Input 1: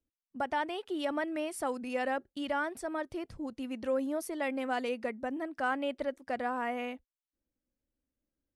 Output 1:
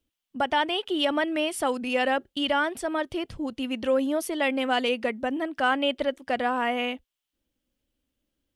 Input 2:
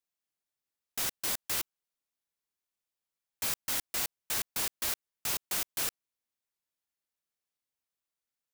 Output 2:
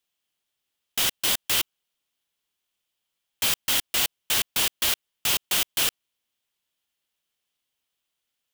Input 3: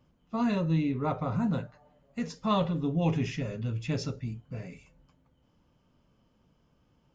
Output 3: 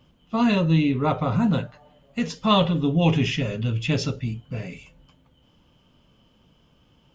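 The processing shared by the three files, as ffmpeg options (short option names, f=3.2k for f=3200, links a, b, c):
-af "equalizer=f=3.1k:w=2.6:g=10,volume=7.5dB"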